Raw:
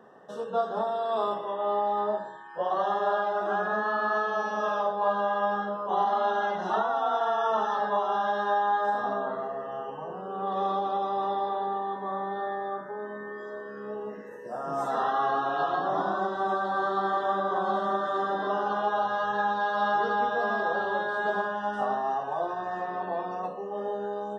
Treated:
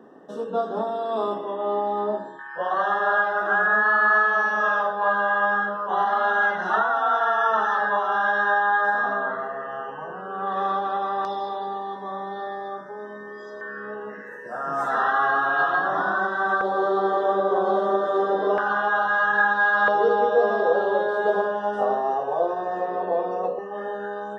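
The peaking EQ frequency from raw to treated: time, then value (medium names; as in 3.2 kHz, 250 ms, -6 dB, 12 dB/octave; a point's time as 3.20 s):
peaking EQ +14.5 dB 0.81 oct
290 Hz
from 2.39 s 1.6 kHz
from 11.25 s 5.3 kHz
from 13.61 s 1.6 kHz
from 16.61 s 460 Hz
from 18.58 s 1.6 kHz
from 19.88 s 480 Hz
from 23.59 s 1.7 kHz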